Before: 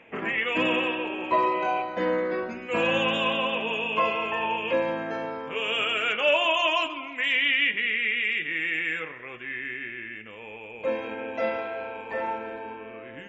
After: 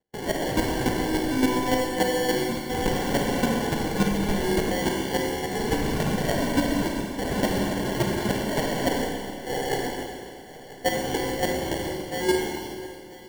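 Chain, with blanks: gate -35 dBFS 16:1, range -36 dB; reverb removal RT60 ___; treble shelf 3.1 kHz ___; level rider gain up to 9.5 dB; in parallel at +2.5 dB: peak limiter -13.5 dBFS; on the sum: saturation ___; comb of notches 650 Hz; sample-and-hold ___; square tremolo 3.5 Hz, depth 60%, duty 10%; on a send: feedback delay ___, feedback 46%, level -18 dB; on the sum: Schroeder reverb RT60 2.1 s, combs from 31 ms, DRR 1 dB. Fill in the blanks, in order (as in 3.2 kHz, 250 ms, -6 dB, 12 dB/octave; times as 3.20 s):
0.63 s, +7 dB, -17 dBFS, 35×, 988 ms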